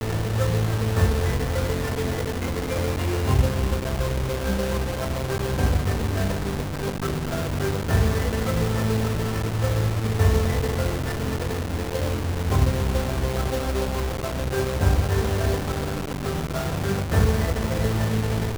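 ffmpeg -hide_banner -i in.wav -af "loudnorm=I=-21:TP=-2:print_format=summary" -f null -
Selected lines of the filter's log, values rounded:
Input Integrated:    -24.7 LUFS
Input True Peak:      -7.7 dBTP
Input LRA:             1.2 LU
Input Threshold:     -34.7 LUFS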